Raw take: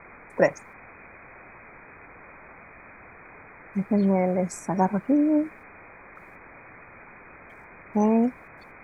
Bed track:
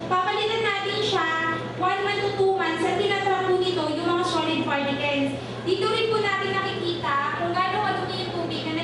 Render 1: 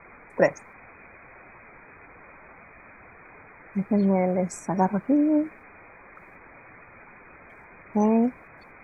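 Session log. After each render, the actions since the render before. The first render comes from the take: denoiser 6 dB, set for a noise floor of -48 dBFS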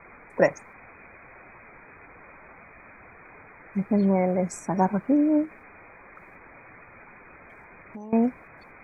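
5.45–8.13 compressor, threshold -37 dBFS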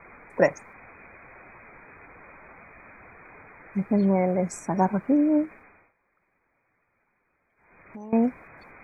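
5.46–8.03 dip -23.5 dB, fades 0.47 s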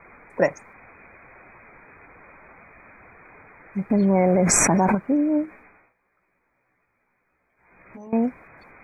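3.9–4.95 fast leveller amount 100%; 5.46–8.07 doubler 16 ms -4 dB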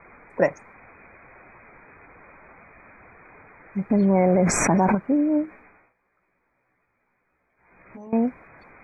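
LPF 3400 Hz 6 dB/oct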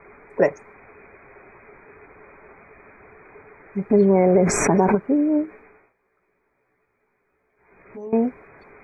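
bell 420 Hz +13.5 dB 0.32 oct; notch 480 Hz, Q 12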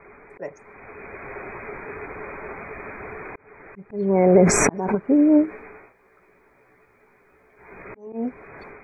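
AGC gain up to 12 dB; auto swell 0.529 s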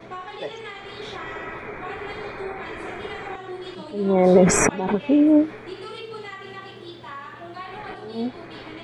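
add bed track -13 dB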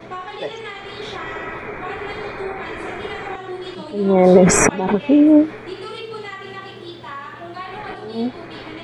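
gain +4.5 dB; limiter -1 dBFS, peak gain reduction 1.5 dB

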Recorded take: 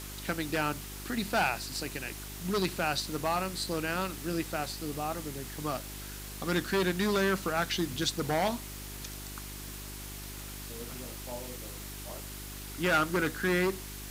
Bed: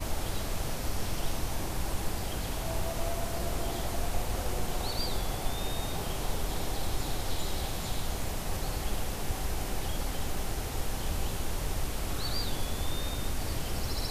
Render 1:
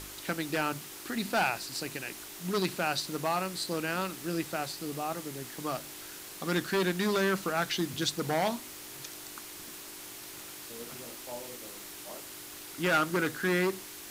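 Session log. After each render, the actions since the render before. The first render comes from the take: de-hum 50 Hz, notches 5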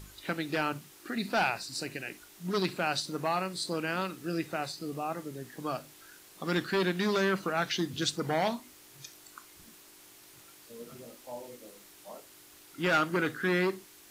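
noise print and reduce 10 dB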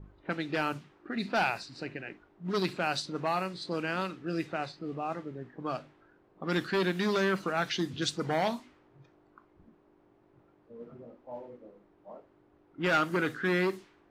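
low-pass opened by the level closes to 620 Hz, open at -26 dBFS; high shelf 7800 Hz -6.5 dB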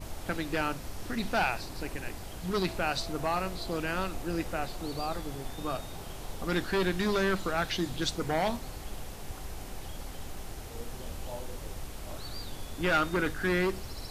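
add bed -8 dB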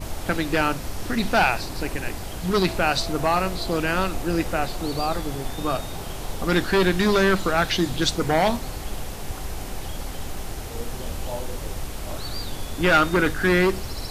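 gain +9 dB

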